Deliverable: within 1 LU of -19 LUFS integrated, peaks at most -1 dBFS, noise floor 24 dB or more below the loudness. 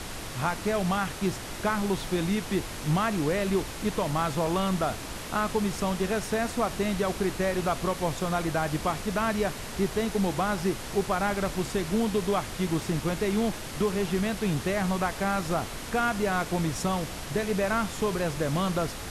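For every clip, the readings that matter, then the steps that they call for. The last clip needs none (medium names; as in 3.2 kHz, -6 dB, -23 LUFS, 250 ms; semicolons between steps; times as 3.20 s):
noise floor -38 dBFS; noise floor target -53 dBFS; loudness -28.5 LUFS; peak level -14.0 dBFS; loudness target -19.0 LUFS
-> noise print and reduce 15 dB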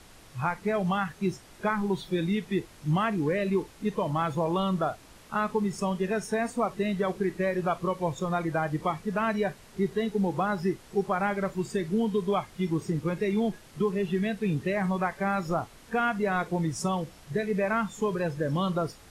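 noise floor -52 dBFS; noise floor target -53 dBFS
-> noise print and reduce 6 dB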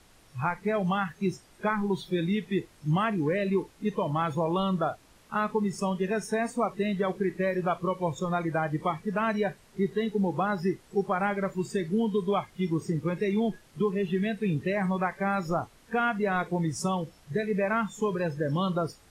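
noise floor -58 dBFS; loudness -29.0 LUFS; peak level -15.5 dBFS; loudness target -19.0 LUFS
-> trim +10 dB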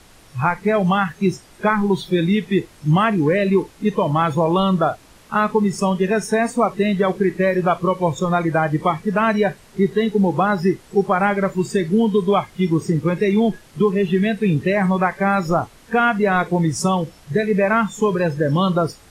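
loudness -19.0 LUFS; peak level -5.5 dBFS; noise floor -48 dBFS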